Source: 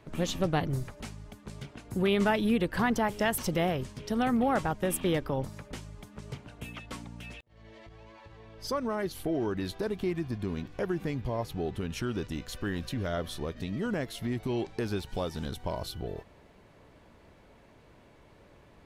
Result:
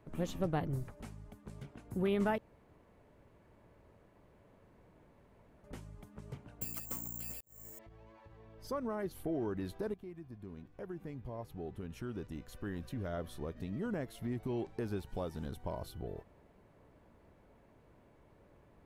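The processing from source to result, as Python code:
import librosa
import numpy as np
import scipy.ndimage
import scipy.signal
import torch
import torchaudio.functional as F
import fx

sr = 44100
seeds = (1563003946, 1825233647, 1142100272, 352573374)

y = fx.resample_bad(x, sr, factor=6, down='filtered', up='zero_stuff', at=(6.61, 7.79))
y = fx.edit(y, sr, fx.room_tone_fill(start_s=2.38, length_s=3.26),
    fx.fade_in_from(start_s=9.94, length_s=3.62, floor_db=-12.5), tone=tone)
y = fx.peak_eq(y, sr, hz=4300.0, db=-9.5, octaves=2.3)
y = y * librosa.db_to_amplitude(-5.5)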